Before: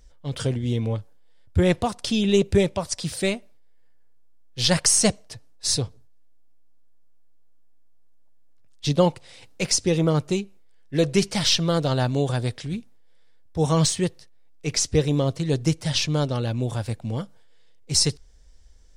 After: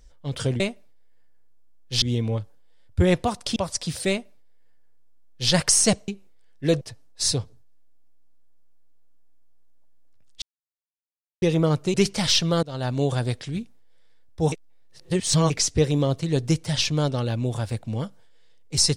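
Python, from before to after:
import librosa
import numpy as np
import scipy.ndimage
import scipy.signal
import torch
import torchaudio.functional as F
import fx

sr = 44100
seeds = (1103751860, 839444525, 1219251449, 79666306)

y = fx.edit(x, sr, fx.cut(start_s=2.14, length_s=0.59),
    fx.duplicate(start_s=3.26, length_s=1.42, to_s=0.6),
    fx.silence(start_s=8.86, length_s=1.0),
    fx.move(start_s=10.38, length_s=0.73, to_s=5.25),
    fx.fade_in_from(start_s=11.8, length_s=0.39, floor_db=-22.5),
    fx.reverse_span(start_s=13.69, length_s=0.98), tone=tone)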